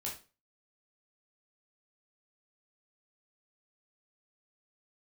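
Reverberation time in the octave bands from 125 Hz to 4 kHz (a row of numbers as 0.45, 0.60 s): 0.35, 0.40, 0.35, 0.30, 0.30, 0.30 s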